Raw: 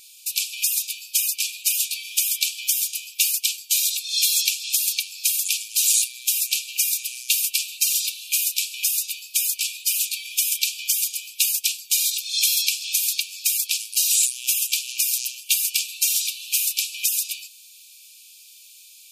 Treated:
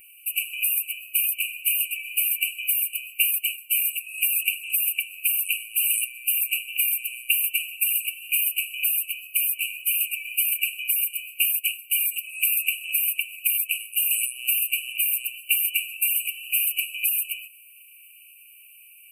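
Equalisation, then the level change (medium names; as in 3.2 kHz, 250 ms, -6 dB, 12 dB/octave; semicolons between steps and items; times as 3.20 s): brick-wall FIR band-stop 3–7.8 kHz; peaking EQ 10 kHz -4 dB 0.5 oct; static phaser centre 2.9 kHz, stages 4; +5.0 dB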